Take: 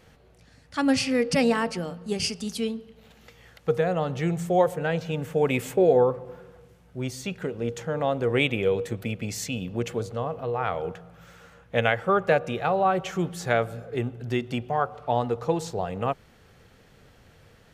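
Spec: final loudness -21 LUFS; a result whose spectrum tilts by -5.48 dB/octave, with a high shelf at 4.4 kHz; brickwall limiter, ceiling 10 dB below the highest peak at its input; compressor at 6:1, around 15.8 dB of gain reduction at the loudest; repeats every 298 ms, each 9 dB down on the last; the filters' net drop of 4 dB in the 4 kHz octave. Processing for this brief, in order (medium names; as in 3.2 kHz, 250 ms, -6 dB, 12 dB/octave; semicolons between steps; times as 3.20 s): peaking EQ 4 kHz -3.5 dB; treble shelf 4.4 kHz -3.5 dB; compression 6:1, threshold -33 dBFS; peak limiter -29.5 dBFS; feedback delay 298 ms, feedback 35%, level -9 dB; trim +19 dB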